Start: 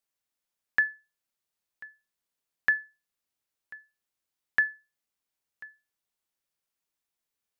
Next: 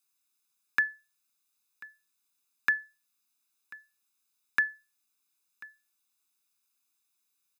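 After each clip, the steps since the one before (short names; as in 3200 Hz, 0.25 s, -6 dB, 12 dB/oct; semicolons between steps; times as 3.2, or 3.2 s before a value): HPF 180 Hz 24 dB/oct; high shelf 3100 Hz +9.5 dB; comb 0.8 ms, depth 75%; gain -1.5 dB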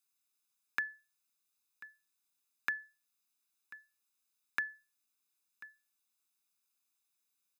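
compressor 4:1, threshold -27 dBFS, peak gain reduction 5.5 dB; gain -4.5 dB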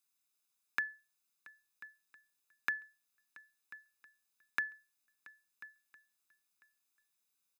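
feedback echo 0.679 s, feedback 46%, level -22 dB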